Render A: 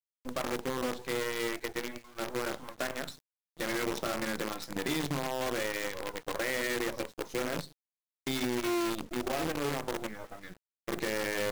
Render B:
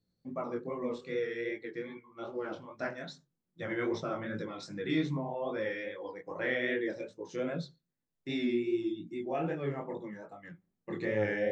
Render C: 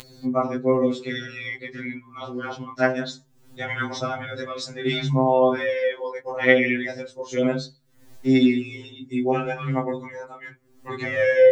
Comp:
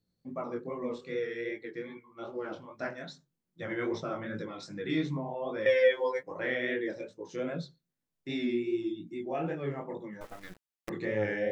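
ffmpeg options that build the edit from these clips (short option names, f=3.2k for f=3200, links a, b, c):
-filter_complex "[1:a]asplit=3[a][b][c];[a]atrim=end=5.662[d];[2:a]atrim=start=5.658:end=6.232[e];[b]atrim=start=6.228:end=10.212[f];[0:a]atrim=start=10.208:end=10.892[g];[c]atrim=start=10.888[h];[d][e]acrossfade=d=0.004:c1=hsin:c2=hsin[i];[i][f]acrossfade=d=0.004:c1=hsin:c2=hsin[j];[j][g]acrossfade=d=0.004:c1=hsin:c2=hsin[k];[k][h]acrossfade=d=0.004:c1=hsin:c2=hsin"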